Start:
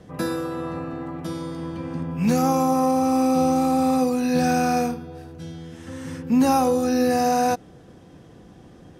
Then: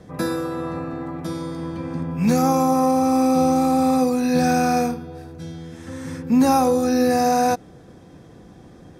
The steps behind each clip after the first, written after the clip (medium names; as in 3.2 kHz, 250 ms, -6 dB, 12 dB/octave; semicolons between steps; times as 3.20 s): band-stop 2.9 kHz, Q 7.5; trim +2 dB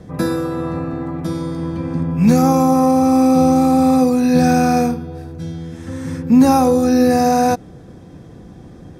bass shelf 300 Hz +7 dB; trim +2 dB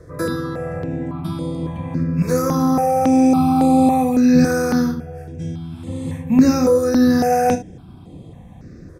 on a send: early reflections 32 ms -9 dB, 69 ms -13.5 dB; on the sum: stepped phaser 3.6 Hz 800–5600 Hz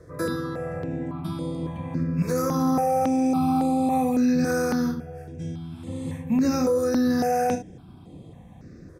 bass shelf 79 Hz -5.5 dB; peak limiter -10.5 dBFS, peak gain reduction 8 dB; trim -4.5 dB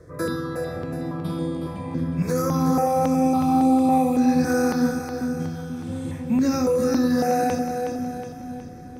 two-band feedback delay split 400 Hz, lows 487 ms, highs 367 ms, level -7 dB; trim +1 dB